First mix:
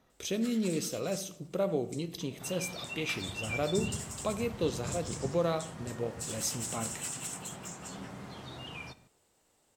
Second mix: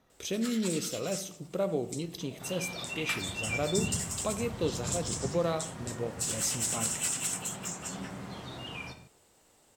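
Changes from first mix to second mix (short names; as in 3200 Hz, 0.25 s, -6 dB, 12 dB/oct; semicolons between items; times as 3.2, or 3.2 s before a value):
first sound +7.0 dB; second sound: send +10.0 dB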